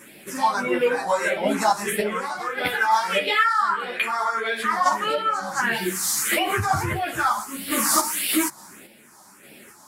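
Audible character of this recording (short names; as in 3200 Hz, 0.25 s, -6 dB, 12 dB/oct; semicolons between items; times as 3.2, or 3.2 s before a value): phasing stages 4, 1.6 Hz, lowest notch 430–1100 Hz; random-step tremolo; a shimmering, thickened sound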